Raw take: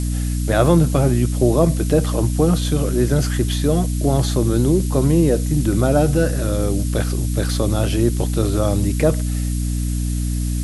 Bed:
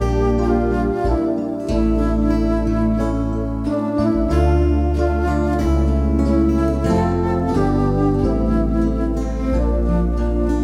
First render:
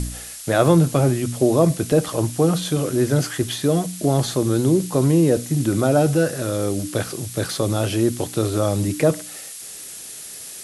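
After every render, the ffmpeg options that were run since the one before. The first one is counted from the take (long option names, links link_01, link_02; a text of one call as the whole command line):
ffmpeg -i in.wav -af "bandreject=frequency=60:width_type=h:width=4,bandreject=frequency=120:width_type=h:width=4,bandreject=frequency=180:width_type=h:width=4,bandreject=frequency=240:width_type=h:width=4,bandreject=frequency=300:width_type=h:width=4" out.wav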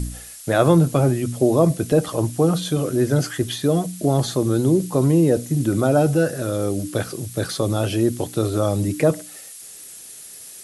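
ffmpeg -i in.wav -af "afftdn=noise_reduction=6:noise_floor=-36" out.wav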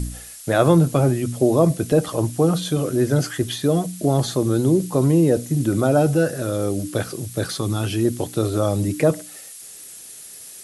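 ffmpeg -i in.wav -filter_complex "[0:a]asettb=1/sr,asplit=3[link_01][link_02][link_03];[link_01]atrim=end=7.584[link_04];[link_02]atrim=start=7.58:end=8.05,asetpts=PTS-STARTPTS,afade=type=in:duration=0.004:curve=qsin,afade=type=out:start_time=0.466:duration=0.004:curve=qsin,equalizer=frequency=570:width_type=o:width=0.56:gain=-13[link_05];[link_03]atrim=start=8.046[link_06];[link_04][link_05]acrossfade=duration=0.004:curve1=hsin:curve2=qsin[link_07];[link_07][link_06]acrossfade=duration=0.004:curve1=qsin:curve2=hsin" out.wav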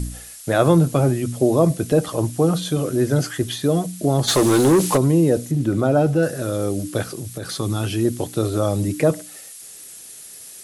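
ffmpeg -i in.wav -filter_complex "[0:a]asplit=3[link_01][link_02][link_03];[link_01]afade=type=out:start_time=4.27:duration=0.02[link_04];[link_02]asplit=2[link_05][link_06];[link_06]highpass=frequency=720:poles=1,volume=23dB,asoftclip=type=tanh:threshold=-7dB[link_07];[link_05][link_07]amix=inputs=2:normalize=0,lowpass=frequency=6900:poles=1,volume=-6dB,afade=type=in:start_time=4.27:duration=0.02,afade=type=out:start_time=4.96:duration=0.02[link_08];[link_03]afade=type=in:start_time=4.96:duration=0.02[link_09];[link_04][link_08][link_09]amix=inputs=3:normalize=0,asettb=1/sr,asplit=3[link_10][link_11][link_12];[link_10]atrim=end=5.514[link_13];[link_11]atrim=start=5.51:end=6.23,asetpts=PTS-STARTPTS,afade=type=in:duration=0.004:curve=qsin,afade=type=out:start_time=0.716:duration=0.004:curve=qsin,highshelf=frequency=5600:gain=-11.5[link_14];[link_12]atrim=start=6.226[link_15];[link_13][link_14]acrossfade=duration=0.004:curve1=hsin:curve2=qsin[link_16];[link_16][link_15]acrossfade=duration=0.004:curve1=qsin:curve2=hsin,asettb=1/sr,asplit=3[link_17][link_18][link_19];[link_17]atrim=end=7.104[link_20];[link_18]atrim=start=7.1:end=7.52,asetpts=PTS-STARTPTS,afade=type=in:duration=0.004:curve=qsin,afade=type=out:start_time=0.416:duration=0.004:curve=qsin,acompressor=threshold=-25dB:ratio=6:attack=3.2:release=140:knee=1:detection=peak[link_21];[link_19]atrim=start=7.516[link_22];[link_20][link_21]acrossfade=duration=0.004:curve1=hsin:curve2=qsin[link_23];[link_23][link_22]acrossfade=duration=0.004:curve1=qsin:curve2=hsin" out.wav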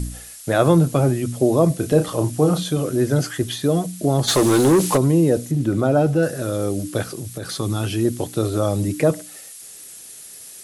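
ffmpeg -i in.wav -filter_complex "[0:a]asettb=1/sr,asplit=3[link_01][link_02][link_03];[link_01]atrim=end=1.764[link_04];[link_02]atrim=start=1.76:end=2.63,asetpts=PTS-STARTPTS,afade=type=in:duration=0.004:curve=qsin,afade=type=out:start_time=0.866:duration=0.004:curve=qsin,asplit=2[link_05][link_06];[link_06]adelay=33,volume=-7dB[link_07];[link_05][link_07]amix=inputs=2:normalize=0,atrim=end_sample=38367[link_08];[link_03]atrim=start=2.626[link_09];[link_04][link_08]acrossfade=duration=0.004:curve1=hsin:curve2=qsin[link_10];[link_10][link_09]acrossfade=duration=0.004:curve1=qsin:curve2=hsin" out.wav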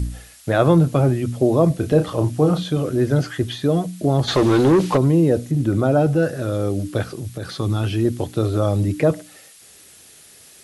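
ffmpeg -i in.wav -filter_complex "[0:a]acrossover=split=4700[link_01][link_02];[link_02]acompressor=threshold=-46dB:ratio=4:attack=1:release=60[link_03];[link_01][link_03]amix=inputs=2:normalize=0,equalizer=frequency=78:width=1.9:gain=7.5" out.wav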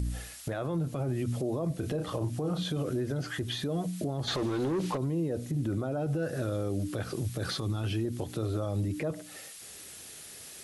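ffmpeg -i in.wav -af "acompressor=threshold=-27dB:ratio=2.5,alimiter=limit=-23.5dB:level=0:latency=1:release=75" out.wav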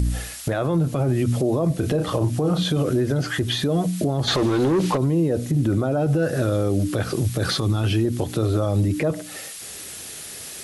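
ffmpeg -i in.wav -af "volume=10.5dB" out.wav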